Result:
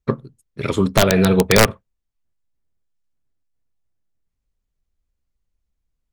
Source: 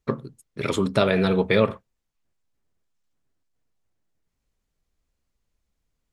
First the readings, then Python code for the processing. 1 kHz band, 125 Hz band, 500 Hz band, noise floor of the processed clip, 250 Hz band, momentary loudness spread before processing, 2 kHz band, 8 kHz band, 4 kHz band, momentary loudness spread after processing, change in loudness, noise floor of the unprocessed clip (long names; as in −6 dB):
+6.5 dB, +7.0 dB, +4.0 dB, −78 dBFS, +5.5 dB, 13 LU, +7.0 dB, can't be measured, +8.5 dB, 14 LU, +6.0 dB, −79 dBFS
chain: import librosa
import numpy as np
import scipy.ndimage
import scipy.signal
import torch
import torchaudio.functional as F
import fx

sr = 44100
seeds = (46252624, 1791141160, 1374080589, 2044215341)

y = (np.mod(10.0 ** (9.0 / 20.0) * x + 1.0, 2.0) - 1.0) / 10.0 ** (9.0 / 20.0)
y = fx.low_shelf(y, sr, hz=110.0, db=10.0)
y = fx.upward_expand(y, sr, threshold_db=-40.0, expansion=1.5)
y = F.gain(torch.from_numpy(y), 6.0).numpy()